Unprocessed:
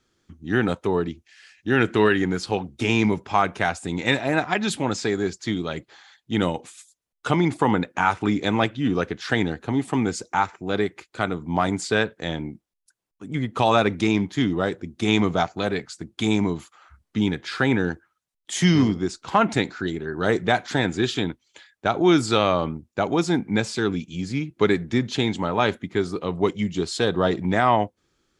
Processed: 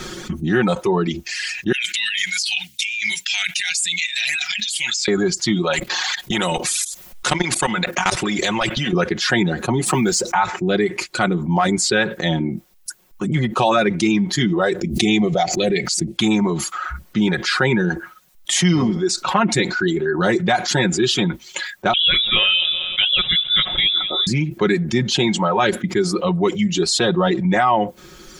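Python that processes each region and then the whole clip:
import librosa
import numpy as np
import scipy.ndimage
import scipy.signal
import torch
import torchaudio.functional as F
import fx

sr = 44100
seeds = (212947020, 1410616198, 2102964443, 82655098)

y = fx.chain(x, sr, fx.cheby2_highpass(hz=1200.0, order=4, stop_db=40),
    fx.over_compress(threshold_db=-41.0, ratio=-1.0), at=(1.72, 5.08))
y = fx.chain(y, sr, fx.level_steps(step_db=18),
    fx.spectral_comp(ratio=2.0), at=(5.73, 8.93))
y = fx.chain(y, sr, fx.law_mismatch(coded='mu'),
    fx.band_squash(depth_pct=40), at=(9.86, 10.35))
y = fx.chain(y, sr, fx.band_shelf(hz=1200.0, db=-12.5, octaves=1.1),
    fx.pre_swell(db_per_s=120.0), at=(14.81, 16.18))
y = fx.chain(y, sr, fx.echo_feedback(ms=191, feedback_pct=38, wet_db=-16.0),
    fx.freq_invert(carrier_hz=3700), at=(21.93, 24.27))
y = fx.dereverb_blind(y, sr, rt60_s=1.6)
y = y + 0.77 * np.pad(y, (int(5.5 * sr / 1000.0), 0))[:len(y)]
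y = fx.env_flatten(y, sr, amount_pct=70)
y = y * 10.0 ** (-3.5 / 20.0)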